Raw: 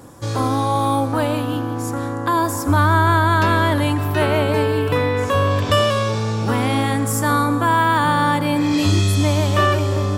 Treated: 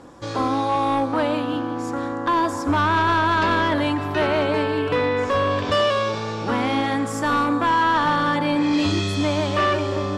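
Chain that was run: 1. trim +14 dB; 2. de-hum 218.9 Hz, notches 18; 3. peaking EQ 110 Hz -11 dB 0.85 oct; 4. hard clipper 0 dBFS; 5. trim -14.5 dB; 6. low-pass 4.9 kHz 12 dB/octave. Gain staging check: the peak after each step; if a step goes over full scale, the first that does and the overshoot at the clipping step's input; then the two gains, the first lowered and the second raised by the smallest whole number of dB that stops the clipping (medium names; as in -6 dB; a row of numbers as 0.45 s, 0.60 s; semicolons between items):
+9.5 dBFS, +9.0 dBFS, +8.5 dBFS, 0.0 dBFS, -14.5 dBFS, -14.0 dBFS; step 1, 8.5 dB; step 1 +5 dB, step 5 -5.5 dB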